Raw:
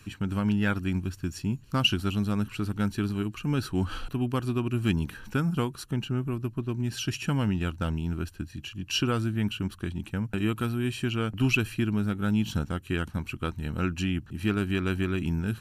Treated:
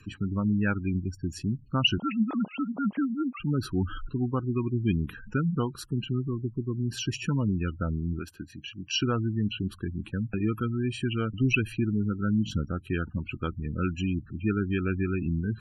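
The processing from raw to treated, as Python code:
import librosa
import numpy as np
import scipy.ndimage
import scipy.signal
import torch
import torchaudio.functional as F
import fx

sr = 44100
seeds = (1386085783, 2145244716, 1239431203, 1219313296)

y = fx.sine_speech(x, sr, at=(1.98, 3.4))
y = fx.highpass(y, sr, hz=fx.line((8.19, 310.0), (9.02, 140.0)), slope=6, at=(8.19, 9.02), fade=0.02)
y = fx.spec_gate(y, sr, threshold_db=-20, keep='strong')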